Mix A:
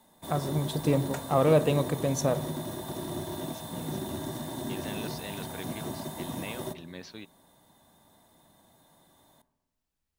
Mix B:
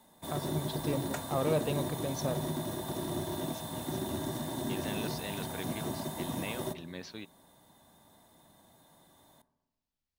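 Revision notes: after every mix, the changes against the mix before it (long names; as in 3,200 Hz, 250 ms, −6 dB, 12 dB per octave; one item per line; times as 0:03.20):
first voice: add transistor ladder low-pass 5,900 Hz, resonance 40%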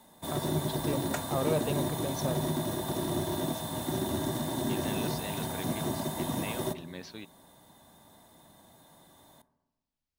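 background +4.0 dB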